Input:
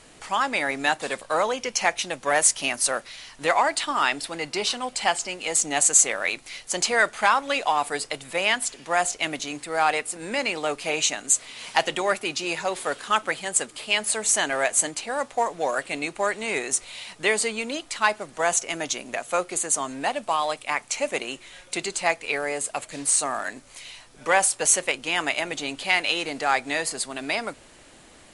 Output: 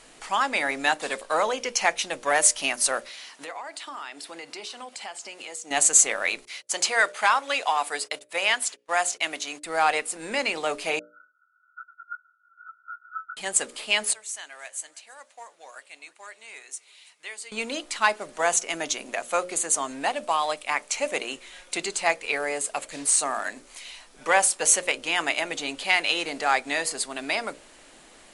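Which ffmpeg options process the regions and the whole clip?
-filter_complex "[0:a]asettb=1/sr,asplit=3[a][b][c];[a]atrim=end=3.094[d];[b]atrim=start=3.09:end=5.71,asetpts=PTS-STARTPTS,afade=t=in:d=0.004:c=qsin,afade=t=out:st=2.616:d=0.004:c=qsin,highpass=230,acompressor=threshold=-36dB:ratio=4:attack=3.2:release=140:knee=1:detection=peak[e];[c]atrim=start=5.706[f];[d][e]acrossfade=d=0.004:c1=hsin:c2=qsin[g];[g][f]acrossfade=d=0.004:c1=qsin:c2=hsin,asettb=1/sr,asplit=3[h][i][j];[h]atrim=end=6.454[k];[i]atrim=start=6.45:end=9.64,asetpts=PTS-STARTPTS,afade=t=in:d=0.004:c=qsin,afade=t=out:st=3.186:d=0.004:c=qsin,highpass=f=520:p=1,agate=range=-34dB:threshold=-42dB:ratio=16:release=100:detection=peak[l];[j]atrim=start=9.636[m];[k][l]acrossfade=d=0.004:c1=hsin:c2=qsin[n];[n][m]acrossfade=d=0.004:c1=qsin:c2=hsin,asettb=1/sr,asplit=3[o][p][q];[o]atrim=end=10.994[r];[p]atrim=start=10.99:end=13.37,asetpts=PTS-STARTPTS,afade=t=in:d=0.004:c=qsin,afade=t=out:st=2.376:d=0.004:c=qsin,flanger=delay=15.5:depth=5.1:speed=2.3,asuperpass=centerf=1400:order=20:qfactor=7.2[s];[q]atrim=start=13.366[t];[r][s]acrossfade=d=0.004:c1=hsin:c2=qsin[u];[u][t]acrossfade=d=0.004:c1=qsin:c2=hsin,asettb=1/sr,asplit=3[v][w][x];[v]atrim=end=14.134[y];[w]atrim=start=14.13:end=17.52,asetpts=PTS-STARTPTS,afade=t=in:d=0.004:c=qsin,afade=t=out:st=3.386:d=0.004:c=qsin,lowpass=f=1.6k:p=1,aderivative,aecho=1:1:330|660|990:0.0708|0.0283|0.0113,atrim=end_sample=149499[z];[x]atrim=start=17.516[aa];[y][z]acrossfade=d=0.004:c1=hsin:c2=qsin[ab];[ab][aa]acrossfade=d=0.004:c1=qsin:c2=hsin,equalizer=f=91:t=o:w=1.5:g=-11.5,bandreject=f=60:t=h:w=6,bandreject=f=120:t=h:w=6,bandreject=f=180:t=h:w=6,bandreject=f=240:t=h:w=6,bandreject=f=300:t=h:w=6,bandreject=f=360:t=h:w=6,bandreject=f=420:t=h:w=6,bandreject=f=480:t=h:w=6,bandreject=f=540:t=h:w=6,bandreject=f=600:t=h:w=6"

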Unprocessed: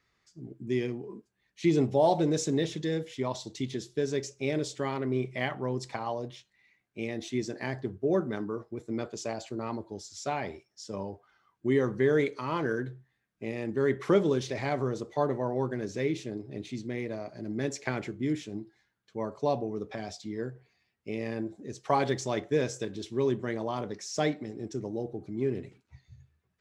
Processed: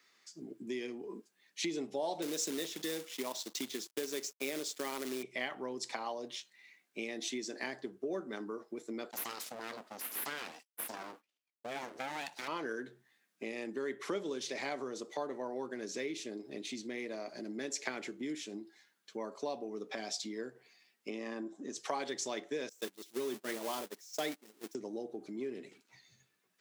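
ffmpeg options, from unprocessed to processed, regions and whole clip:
-filter_complex "[0:a]asettb=1/sr,asplit=3[a][b][c];[a]atrim=end=2.224[d];[b]atrim=start=2.22:end=5.23,asetpts=PTS-STARTPTS,afade=t=in:d=0.004:c=qsin,afade=t=out:st=3.006:d=0.004:c=qsin,highpass=140,aeval=exprs='sgn(val(0))*max(abs(val(0))-0.00237,0)':c=same,acrusher=bits=3:mode=log:mix=0:aa=0.000001[e];[c]atrim=start=5.226[f];[d][e]acrossfade=d=0.004:c1=hsin:c2=qsin[g];[g][f]acrossfade=d=0.004:c1=qsin:c2=hsin,asettb=1/sr,asplit=3[h][i][j];[h]atrim=end=9.114[k];[i]atrim=start=9.11:end=12.48,asetpts=PTS-STARTPTS,afade=t=in:d=0.004:c=qsin,afade=t=out:st=3.366:d=0.004:c=qsin,agate=range=-33dB:threshold=-52dB:ratio=3:release=100:detection=peak,highshelf=f=5.6k:g=5.5,aeval=exprs='abs(val(0))':c=same[l];[j]atrim=start=12.476[m];[k][l]acrossfade=d=0.004:c1=hsin:c2=qsin[n];[n][m]acrossfade=d=0.004:c1=qsin:c2=hsin,asettb=1/sr,asplit=3[o][p][q];[o]atrim=end=21.104[r];[p]atrim=start=21.1:end=21.76,asetpts=PTS-STARTPTS,afade=t=in:d=0.004:c=qsin,afade=t=out:st=0.656:d=0.004:c=qsin,acompressor=mode=upward:threshold=-54dB:ratio=2.5:attack=3.2:release=140:knee=2.83:detection=peak,highpass=120,equalizer=f=270:t=q:w=4:g=5,equalizer=f=460:t=q:w=4:g=-4,equalizer=f=1.1k:t=q:w=4:g=9,equalizer=f=2.3k:t=q:w=4:g=-8,equalizer=f=4.4k:t=q:w=4:g=-9,lowpass=f=8k:w=0.5412,lowpass=f=8k:w=1.3066[s];[q]atrim=start=21.756[t];[r][s]acrossfade=d=0.004:c1=hsin:c2=qsin[u];[u][t]acrossfade=d=0.004:c1=qsin:c2=hsin,asettb=1/sr,asplit=3[v][w][x];[v]atrim=end=22.694[y];[w]atrim=start=22.69:end=24.75,asetpts=PTS-STARTPTS,afade=t=in:d=0.004:c=qsin,afade=t=out:st=2.056:d=0.004:c=qsin,aeval=exprs='val(0)+0.5*0.02*sgn(val(0))':c=same,agate=range=-32dB:threshold=-31dB:ratio=16:release=100:detection=peak,highshelf=f=7.8k:g=6.5[z];[x]atrim=start=24.746[aa];[y][z]acrossfade=d=0.004:c1=hsin:c2=qsin[ab];[ab][aa]acrossfade=d=0.004:c1=qsin:c2=hsin,acompressor=threshold=-40dB:ratio=3,highpass=f=220:w=0.5412,highpass=f=220:w=1.3066,highshelf=f=2.2k:g=10,volume=1dB"

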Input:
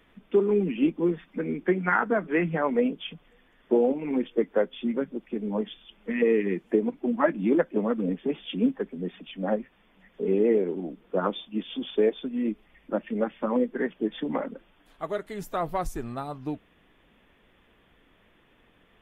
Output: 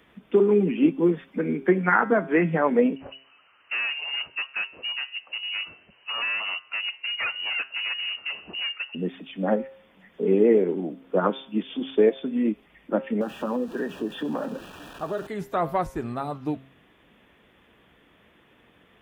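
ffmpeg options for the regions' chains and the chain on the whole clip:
-filter_complex "[0:a]asettb=1/sr,asplit=3[a][b][c];[a]atrim=end=2.964[d];[b]atrim=start=2.96:end=8.95,asetpts=PTS-STARTPTS,afade=t=in:d=0.004:c=qsin,afade=t=out:st=5.986:d=0.004:c=qsin,asoftclip=type=hard:threshold=-26.5dB,highpass=f=130:p=1,lowpass=f=2.6k:t=q:w=0.5098,lowpass=f=2.6k:t=q:w=0.6013,lowpass=f=2.6k:t=q:w=0.9,lowpass=f=2.6k:t=q:w=2.563,afreqshift=-3100[e];[c]atrim=start=8.946[f];[d][e]acrossfade=d=0.004:c1=hsin:c2=qsin[g];[g][f]acrossfade=d=0.004:c1=qsin:c2=hsin,asettb=1/sr,asplit=3[h][i][j];[h]atrim=end=13.214[k];[i]atrim=start=13.21:end=15.27,asetpts=PTS-STARTPTS,afade=t=in:d=0.004:c=qsin,afade=t=out:st=2.056:d=0.004:c=qsin,aeval=exprs='val(0)+0.5*0.0106*sgn(val(0))':c=same,asuperstop=centerf=2100:order=8:qfactor=4.2,acompressor=threshold=-29dB:ratio=3:attack=3.2:release=140:knee=1:detection=peak[l];[j]atrim=start=15.266[m];[k][l]acrossfade=d=0.004:c1=hsin:c2=qsin[n];[n][m]acrossfade=d=0.004:c1=qsin:c2=hsin,acrossover=split=3100[o][p];[p]acompressor=threshold=-56dB:ratio=4:attack=1:release=60[q];[o][q]amix=inputs=2:normalize=0,highpass=66,bandreject=f=133.9:t=h:w=4,bandreject=f=267.8:t=h:w=4,bandreject=f=401.7:t=h:w=4,bandreject=f=535.6:t=h:w=4,bandreject=f=669.5:t=h:w=4,bandreject=f=803.4:t=h:w=4,bandreject=f=937.3:t=h:w=4,bandreject=f=1.0712k:t=h:w=4,bandreject=f=1.2051k:t=h:w=4,bandreject=f=1.339k:t=h:w=4,bandreject=f=1.4729k:t=h:w=4,bandreject=f=1.6068k:t=h:w=4,bandreject=f=1.7407k:t=h:w=4,bandreject=f=1.8746k:t=h:w=4,bandreject=f=2.0085k:t=h:w=4,bandreject=f=2.1424k:t=h:w=4,bandreject=f=2.2763k:t=h:w=4,bandreject=f=2.4102k:t=h:w=4,bandreject=f=2.5441k:t=h:w=4,bandreject=f=2.678k:t=h:w=4,bandreject=f=2.8119k:t=h:w=4,bandreject=f=2.9458k:t=h:w=4,bandreject=f=3.0797k:t=h:w=4,bandreject=f=3.2136k:t=h:w=4,bandreject=f=3.3475k:t=h:w=4,bandreject=f=3.4814k:t=h:w=4,bandreject=f=3.6153k:t=h:w=4,bandreject=f=3.7492k:t=h:w=4,bandreject=f=3.8831k:t=h:w=4,bandreject=f=4.017k:t=h:w=4,bandreject=f=4.1509k:t=h:w=4,bandreject=f=4.2848k:t=h:w=4,bandreject=f=4.4187k:t=h:w=4,bandreject=f=4.5526k:t=h:w=4,bandreject=f=4.6865k:t=h:w=4,bandreject=f=4.8204k:t=h:w=4,bandreject=f=4.9543k:t=h:w=4,bandreject=f=5.0882k:t=h:w=4,bandreject=f=5.2221k:t=h:w=4,volume=4dB"

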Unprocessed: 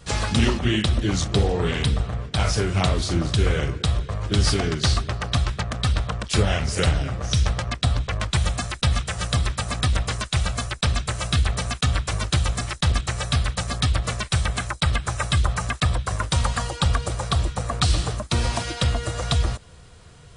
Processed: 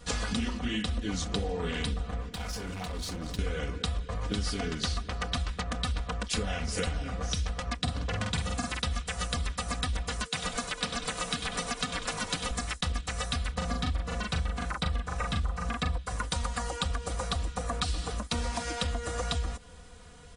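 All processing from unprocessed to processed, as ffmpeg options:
-filter_complex "[0:a]asettb=1/sr,asplit=3[a][b][c];[a]atrim=end=2.224[d];[b]atrim=start=2.22:end=3.39,asetpts=PTS-STARTPTS,afade=t=in:d=0.004:c=qsin,afade=t=out:st=1.166:d=0.004:c=qsin,acompressor=threshold=-26dB:ratio=6:attack=3.2:release=140:knee=1:detection=peak,asoftclip=type=hard:threshold=-29.5dB[e];[c]atrim=start=3.386[f];[d][e]acrossfade=d=0.004:c1=hsin:c2=qsin[g];[g][f]acrossfade=d=0.004:c1=qsin:c2=hsin,asettb=1/sr,asplit=3[h][i][j];[h]atrim=end=7.794[k];[i]atrim=start=7.79:end=8.82,asetpts=PTS-STARTPTS,afade=t=in:d=0.004:c=qsin,afade=t=out:st=1.026:d=0.004:c=qsin,highpass=f=72:w=0.5412,highpass=f=72:w=1.3066,lowshelf=f=380:g=7,asplit=2[l][m];[m]adelay=48,volume=-3dB[n];[l][n]amix=inputs=2:normalize=0,atrim=end_sample=45423[o];[j]atrim=start=8.816[p];[k][o]acrossfade=d=0.004:c1=hsin:c2=qsin[q];[q][p]acrossfade=d=0.004:c1=qsin:c2=hsin,asettb=1/sr,asplit=3[r][s][t];[r]atrim=end=10.254[u];[s]atrim=start=10.25:end=12.51,asetpts=PTS-STARTPTS,afade=t=in:d=0.004:c=qsin,afade=t=out:st=2.256:d=0.004:c=qsin,highpass=f=130:w=0.5412,highpass=f=130:w=1.3066,asplit=6[v][w][x][y][z][aa];[w]adelay=96,afreqshift=-76,volume=-9dB[ab];[x]adelay=192,afreqshift=-152,volume=-15.6dB[ac];[y]adelay=288,afreqshift=-228,volume=-22.1dB[ad];[z]adelay=384,afreqshift=-304,volume=-28.7dB[ae];[aa]adelay=480,afreqshift=-380,volume=-35.2dB[af];[v][ab][ac][ad][ae][af]amix=inputs=6:normalize=0,atrim=end_sample=99666,aeval=exprs='val(0)+0.00447*sin(2*PI*460*n/s)':c=same[ag];[t]atrim=start=12.506[ah];[u][ag]acrossfade=d=0.004:c1=hsin:c2=qsin[ai];[ai][ah]acrossfade=d=0.004:c1=qsin:c2=hsin,asettb=1/sr,asplit=3[aj][ak][al];[aj]atrim=end=13.524[am];[ak]atrim=start=13.52:end=15.98,asetpts=PTS-STARTPTS,afade=t=in:d=0.004:c=qsin,afade=t=out:st=2.456:d=0.004:c=qsin,tiltshelf=f=1.3k:g=3.5,asplit=2[an][ao];[ao]adelay=40,volume=-2dB[ap];[an][ap]amix=inputs=2:normalize=0,atrim=end_sample=108486,acrossover=split=6700[aq][ar];[ar]acompressor=threshold=-46dB:ratio=4:attack=1:release=60[as];[aq][as]amix=inputs=2:normalize=0[at];[al]atrim=start=15.976[au];[am][at]acrossfade=d=0.004:c1=hsin:c2=qsin[av];[av][au]acrossfade=d=0.004:c1=qsin:c2=hsin,aecho=1:1:4.1:0.74,acompressor=threshold=-24dB:ratio=6,volume=-4dB"

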